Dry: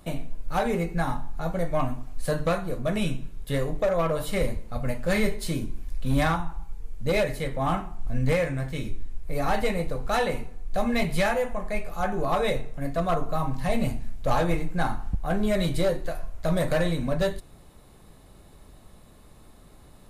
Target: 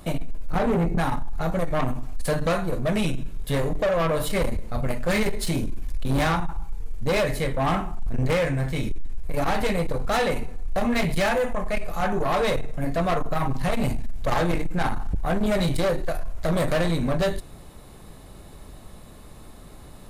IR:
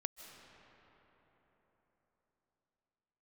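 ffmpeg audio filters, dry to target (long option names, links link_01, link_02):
-filter_complex "[0:a]asettb=1/sr,asplit=3[link_01][link_02][link_03];[link_01]atrim=end=0.524[link_04];[link_02]atrim=start=0.52:end=0.98,asetpts=PTS-STARTPTS,afade=type=in:duration=0.004:curve=qsin,afade=type=out:start_time=0.456:duration=0.004:curve=qsin,tiltshelf=frequency=700:gain=7[link_05];[link_03]atrim=start=0.976[link_06];[link_04][link_05]acrossfade=duration=0.004:curve1=hsin:curve2=qsin[link_07];[link_07][link_06]acrossfade=duration=0.004:curve1=qsin:curve2=hsin,asoftclip=type=tanh:threshold=-25.5dB,volume=7dB"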